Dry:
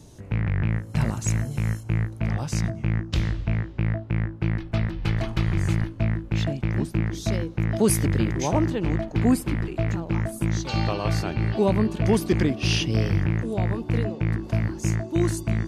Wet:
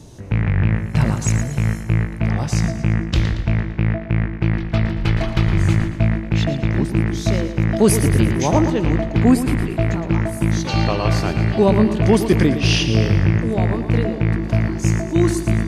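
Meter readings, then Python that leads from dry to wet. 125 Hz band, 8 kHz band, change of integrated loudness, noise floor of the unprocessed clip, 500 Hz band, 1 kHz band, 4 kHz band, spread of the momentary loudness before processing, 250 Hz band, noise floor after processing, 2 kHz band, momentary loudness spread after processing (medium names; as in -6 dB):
+6.0 dB, +5.0 dB, +6.5 dB, -40 dBFS, +7.0 dB, +7.0 dB, +6.5 dB, 5 LU, +7.0 dB, -29 dBFS, +7.0 dB, 6 LU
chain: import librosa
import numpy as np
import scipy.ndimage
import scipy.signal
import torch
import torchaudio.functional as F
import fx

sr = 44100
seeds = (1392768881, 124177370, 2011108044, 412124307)

y = fx.high_shelf(x, sr, hz=10000.0, db=-6.5)
y = fx.echo_feedback(y, sr, ms=114, feedback_pct=49, wet_db=-10)
y = F.gain(torch.from_numpy(y), 6.5).numpy()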